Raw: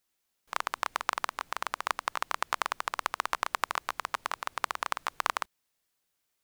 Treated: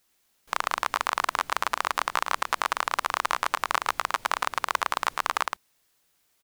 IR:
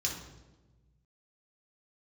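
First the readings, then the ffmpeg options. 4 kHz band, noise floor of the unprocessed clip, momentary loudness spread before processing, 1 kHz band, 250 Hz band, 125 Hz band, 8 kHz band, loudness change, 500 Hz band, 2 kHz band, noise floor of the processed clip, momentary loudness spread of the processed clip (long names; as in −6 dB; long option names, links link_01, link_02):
+6.0 dB, −80 dBFS, 4 LU, +6.0 dB, +6.0 dB, can't be measured, +6.0 dB, +6.0 dB, +6.0 dB, +6.0 dB, −70 dBFS, 2 LU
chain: -af "aecho=1:1:109:0.398,alimiter=level_in=14dB:limit=-1dB:release=50:level=0:latency=1,volume=-4.5dB"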